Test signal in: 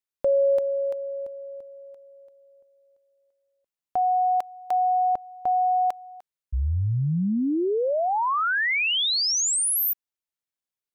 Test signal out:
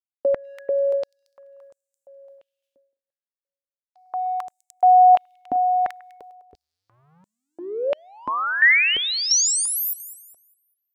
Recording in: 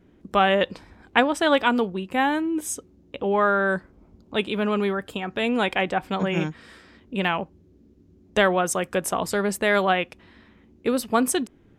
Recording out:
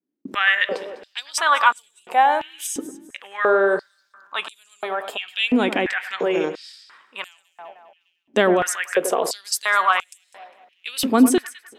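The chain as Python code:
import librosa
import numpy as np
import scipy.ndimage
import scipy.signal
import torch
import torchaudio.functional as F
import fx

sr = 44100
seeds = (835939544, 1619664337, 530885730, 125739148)

y = fx.gate_hold(x, sr, open_db=-45.0, close_db=-53.0, hold_ms=57.0, range_db=-33, attack_ms=3.3, release_ms=289.0)
y = fx.transient(y, sr, attack_db=1, sustain_db=8)
y = fx.vibrato(y, sr, rate_hz=0.31, depth_cents=8.7)
y = fx.echo_alternate(y, sr, ms=101, hz=2000.0, feedback_pct=57, wet_db=-11)
y = fx.filter_held_highpass(y, sr, hz=2.9, low_hz=270.0, high_hz=7500.0)
y = F.gain(torch.from_numpy(y), -1.0).numpy()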